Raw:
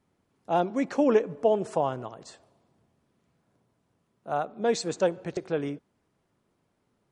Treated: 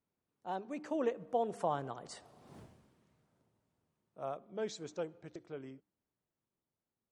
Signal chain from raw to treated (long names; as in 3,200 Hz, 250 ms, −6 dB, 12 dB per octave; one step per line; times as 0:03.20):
source passing by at 0:02.58, 25 m/s, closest 1.8 metres
hum removal 101 Hz, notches 3
level +15 dB